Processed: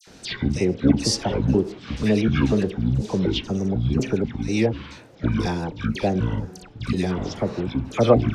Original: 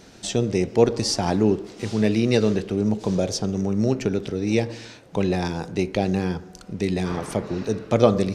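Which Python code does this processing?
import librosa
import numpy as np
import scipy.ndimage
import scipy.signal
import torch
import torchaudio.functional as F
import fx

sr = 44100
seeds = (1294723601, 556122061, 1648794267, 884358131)

y = fx.pitch_trill(x, sr, semitones=-9.0, every_ms=245)
y = fx.dispersion(y, sr, late='lows', ms=75.0, hz=1800.0)
y = y * librosa.db_to_amplitude(1.0)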